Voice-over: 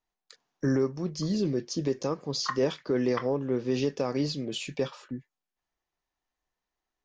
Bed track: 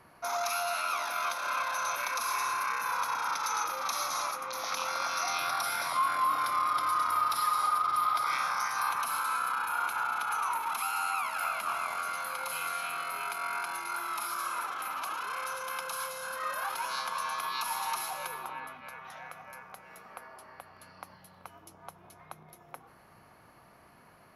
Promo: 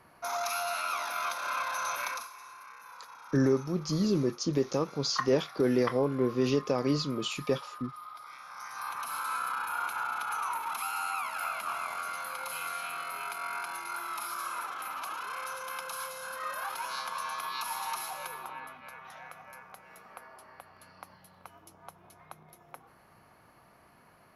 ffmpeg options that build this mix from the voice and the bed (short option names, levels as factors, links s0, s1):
-filter_complex "[0:a]adelay=2700,volume=1.06[s0];[1:a]volume=5.31,afade=t=out:st=2.08:d=0.21:silence=0.149624,afade=t=in:st=8.45:d=0.9:silence=0.16788[s1];[s0][s1]amix=inputs=2:normalize=0"